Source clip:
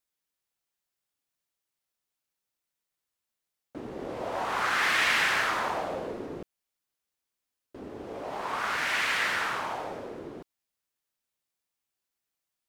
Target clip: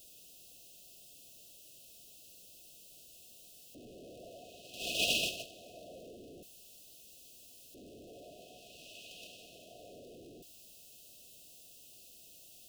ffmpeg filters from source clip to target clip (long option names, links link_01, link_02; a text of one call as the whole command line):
ffmpeg -i in.wav -af "aeval=exprs='val(0)+0.5*0.0422*sgn(val(0))':channel_layout=same,agate=range=-30dB:threshold=-20dB:ratio=16:detection=peak,afftfilt=real='re*(1-between(b*sr/4096,740,2500))':imag='im*(1-between(b*sr/4096,740,2500))':win_size=4096:overlap=0.75,volume=8.5dB" out.wav